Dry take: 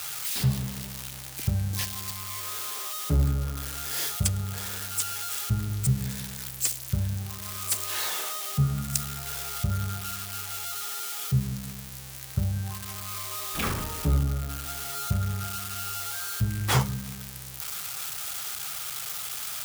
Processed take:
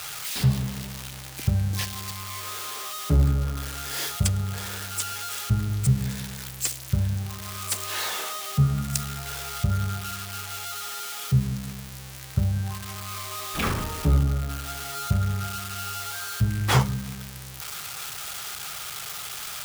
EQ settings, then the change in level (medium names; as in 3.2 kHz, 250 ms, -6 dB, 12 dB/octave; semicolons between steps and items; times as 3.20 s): treble shelf 6.6 kHz -7 dB; +3.5 dB